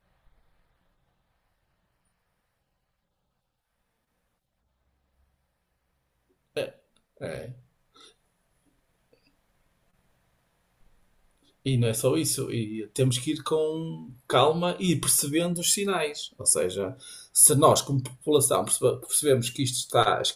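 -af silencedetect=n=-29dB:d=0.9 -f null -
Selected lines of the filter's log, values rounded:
silence_start: 0.00
silence_end: 6.57 | silence_duration: 6.57
silence_start: 7.41
silence_end: 11.66 | silence_duration: 4.25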